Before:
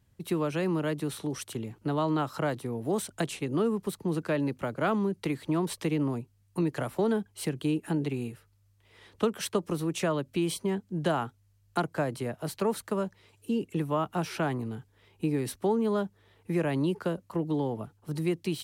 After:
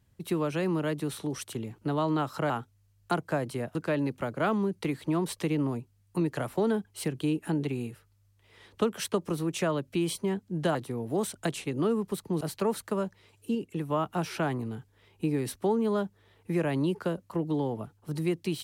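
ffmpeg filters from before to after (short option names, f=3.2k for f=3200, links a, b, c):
-filter_complex "[0:a]asplit=7[a][b][c][d][e][f][g];[a]atrim=end=2.502[h];[b]atrim=start=11.158:end=12.412[i];[c]atrim=start=4.158:end=11.162[j];[d]atrim=start=2.498:end=4.162[k];[e]atrim=start=12.408:end=13.552[l];[f]atrim=start=13.548:end=13.902,asetpts=PTS-STARTPTS,volume=-3dB[m];[g]atrim=start=13.898[n];[h][i]acrossfade=d=0.004:c1=hsin:c2=hsin[o];[o][j]acrossfade=d=0.004:c1=hsin:c2=hsin[p];[p][k]acrossfade=d=0.004:c1=hsin:c2=hsin[q];[q][l]acrossfade=d=0.004:c1=hsin:c2=hsin[r];[r][m]acrossfade=d=0.004:c1=hsin:c2=hsin[s];[s][n]acrossfade=d=0.004:c1=hsin:c2=hsin"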